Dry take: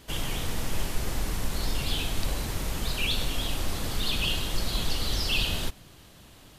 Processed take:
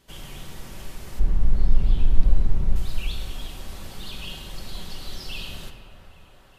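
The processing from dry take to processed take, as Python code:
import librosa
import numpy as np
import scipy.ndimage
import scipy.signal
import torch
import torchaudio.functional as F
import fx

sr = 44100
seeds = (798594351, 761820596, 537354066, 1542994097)

p1 = fx.tilt_eq(x, sr, slope=-4.0, at=(1.19, 2.76))
p2 = p1 + fx.echo_wet_bandpass(p1, sr, ms=408, feedback_pct=77, hz=960.0, wet_db=-10.5, dry=0)
p3 = fx.room_shoebox(p2, sr, seeds[0], volume_m3=2900.0, walls='mixed', distance_m=1.1)
y = p3 * librosa.db_to_amplitude(-9.5)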